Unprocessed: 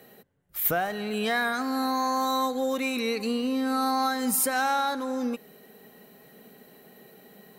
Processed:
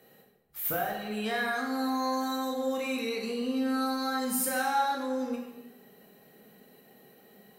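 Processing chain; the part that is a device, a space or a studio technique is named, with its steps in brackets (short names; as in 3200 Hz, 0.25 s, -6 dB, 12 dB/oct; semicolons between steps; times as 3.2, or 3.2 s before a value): bathroom (reverb RT60 0.95 s, pre-delay 12 ms, DRR -1 dB); gain -8 dB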